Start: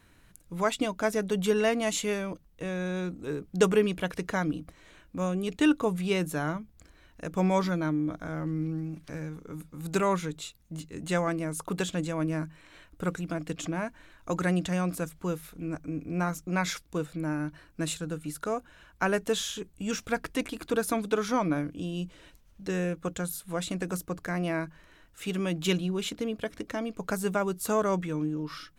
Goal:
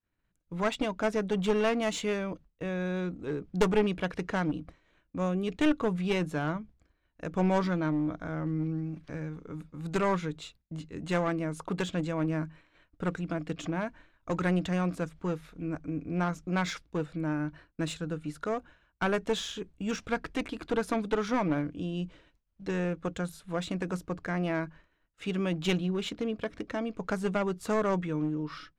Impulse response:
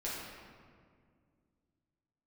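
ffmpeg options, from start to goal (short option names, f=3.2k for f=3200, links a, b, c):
-af "aeval=exprs='clip(val(0),-1,0.0447)':c=same,agate=range=-33dB:threshold=-45dB:ratio=3:detection=peak,adynamicsmooth=sensitivity=2.5:basefreq=4.6k"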